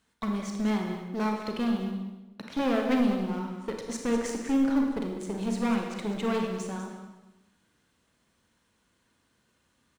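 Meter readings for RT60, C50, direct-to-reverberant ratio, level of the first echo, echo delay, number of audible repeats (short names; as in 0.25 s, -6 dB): 1.0 s, 3.0 dB, 1.5 dB, -11.0 dB, 0.199 s, 1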